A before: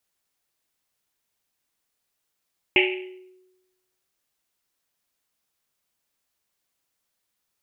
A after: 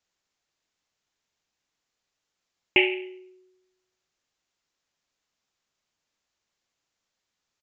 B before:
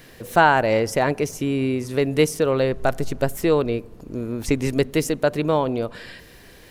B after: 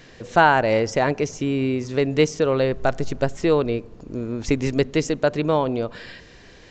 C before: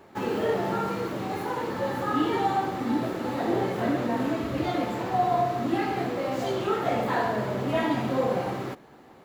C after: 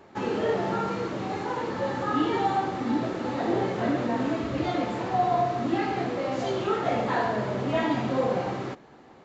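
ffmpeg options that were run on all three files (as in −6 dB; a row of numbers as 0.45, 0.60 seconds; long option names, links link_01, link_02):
-af "aresample=16000,aresample=44100"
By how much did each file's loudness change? 0.0, 0.0, 0.0 LU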